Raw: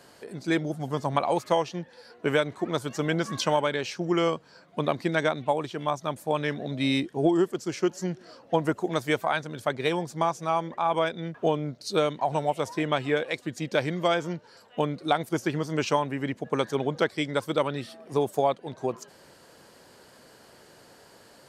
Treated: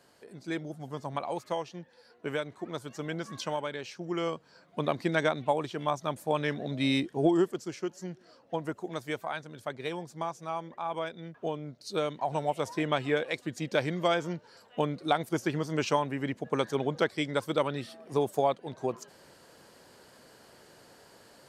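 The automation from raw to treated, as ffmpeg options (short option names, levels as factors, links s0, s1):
-af "volume=1.68,afade=t=in:st=4.04:d=1.07:silence=0.446684,afade=t=out:st=7.4:d=0.4:silence=0.446684,afade=t=in:st=11.65:d=1.06:silence=0.473151"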